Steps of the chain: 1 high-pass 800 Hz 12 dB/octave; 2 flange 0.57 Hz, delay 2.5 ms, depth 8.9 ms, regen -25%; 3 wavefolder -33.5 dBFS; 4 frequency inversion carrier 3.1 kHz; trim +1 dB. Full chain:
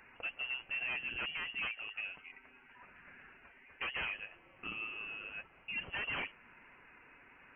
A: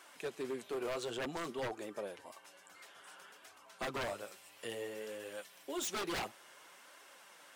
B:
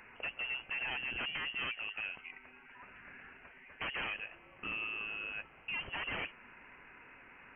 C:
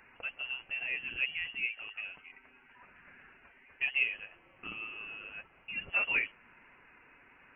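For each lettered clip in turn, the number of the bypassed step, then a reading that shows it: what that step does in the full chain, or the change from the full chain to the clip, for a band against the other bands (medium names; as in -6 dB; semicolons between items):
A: 4, 2 kHz band -16.5 dB; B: 2, 2 kHz band -1.5 dB; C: 3, crest factor change +7.0 dB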